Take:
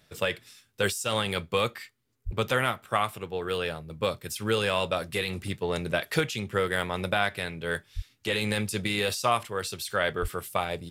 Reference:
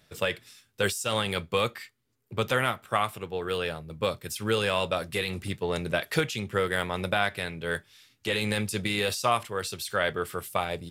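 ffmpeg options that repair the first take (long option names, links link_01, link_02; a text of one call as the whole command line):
ffmpeg -i in.wav -filter_complex "[0:a]asplit=3[link_01][link_02][link_03];[link_01]afade=type=out:start_time=2.25:duration=0.02[link_04];[link_02]highpass=frequency=140:width=0.5412,highpass=frequency=140:width=1.3066,afade=type=in:start_time=2.25:duration=0.02,afade=type=out:start_time=2.37:duration=0.02[link_05];[link_03]afade=type=in:start_time=2.37:duration=0.02[link_06];[link_04][link_05][link_06]amix=inputs=3:normalize=0,asplit=3[link_07][link_08][link_09];[link_07]afade=type=out:start_time=7.95:duration=0.02[link_10];[link_08]highpass=frequency=140:width=0.5412,highpass=frequency=140:width=1.3066,afade=type=in:start_time=7.95:duration=0.02,afade=type=out:start_time=8.07:duration=0.02[link_11];[link_09]afade=type=in:start_time=8.07:duration=0.02[link_12];[link_10][link_11][link_12]amix=inputs=3:normalize=0,asplit=3[link_13][link_14][link_15];[link_13]afade=type=out:start_time=10.21:duration=0.02[link_16];[link_14]highpass=frequency=140:width=0.5412,highpass=frequency=140:width=1.3066,afade=type=in:start_time=10.21:duration=0.02,afade=type=out:start_time=10.33:duration=0.02[link_17];[link_15]afade=type=in:start_time=10.33:duration=0.02[link_18];[link_16][link_17][link_18]amix=inputs=3:normalize=0" out.wav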